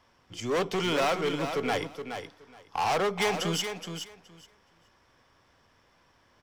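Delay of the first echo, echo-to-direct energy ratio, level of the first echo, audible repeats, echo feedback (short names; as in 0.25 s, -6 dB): 0.421 s, -8.0 dB, -8.0 dB, 2, 16%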